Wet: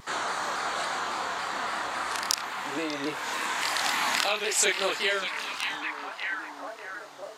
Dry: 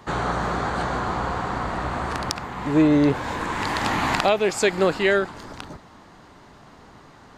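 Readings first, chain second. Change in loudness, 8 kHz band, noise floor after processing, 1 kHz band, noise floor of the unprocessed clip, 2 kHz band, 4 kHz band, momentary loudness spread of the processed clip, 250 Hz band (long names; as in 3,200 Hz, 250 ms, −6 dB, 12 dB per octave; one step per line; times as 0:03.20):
−5.5 dB, +6.0 dB, −43 dBFS, −4.5 dB, −49 dBFS, −1.0 dB, +3.0 dB, 10 LU, −17.0 dB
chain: on a send: echo through a band-pass that steps 593 ms, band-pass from 3,000 Hz, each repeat −0.7 octaves, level −5 dB
on the sum: downward compressor 1.5 to 1, threshold −27 dBFS, peak gain reduction 5 dB
high-pass filter 360 Hz 6 dB per octave
spectral tilt +3.5 dB per octave
multi-voice chorus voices 4, 0.77 Hz, delay 28 ms, depth 2.3 ms
pitch modulation by a square or saw wave saw down 3.6 Hz, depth 100 cents
level +1 dB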